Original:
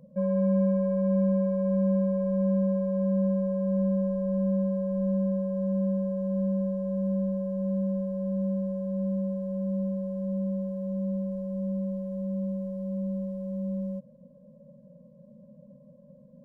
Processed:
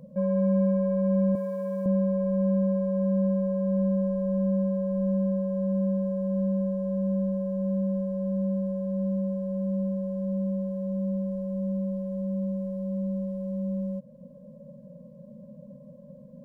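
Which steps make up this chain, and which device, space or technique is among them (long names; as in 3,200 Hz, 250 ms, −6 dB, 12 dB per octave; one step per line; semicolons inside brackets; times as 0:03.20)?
parallel compression (in parallel at −0.5 dB: downward compressor, threshold −45 dBFS, peak gain reduction 21.5 dB)
0:01.35–0:01.86: on the sum: spectral tilt +3.5 dB per octave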